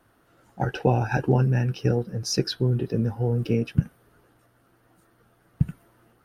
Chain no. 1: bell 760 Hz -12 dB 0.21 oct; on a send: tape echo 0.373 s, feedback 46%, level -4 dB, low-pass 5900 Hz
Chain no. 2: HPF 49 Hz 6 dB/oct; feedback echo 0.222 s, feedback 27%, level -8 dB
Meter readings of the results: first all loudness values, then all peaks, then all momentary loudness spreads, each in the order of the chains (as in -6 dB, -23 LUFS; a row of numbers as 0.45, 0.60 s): -25.0, -25.5 LUFS; -7.5, -6.5 dBFS; 15, 11 LU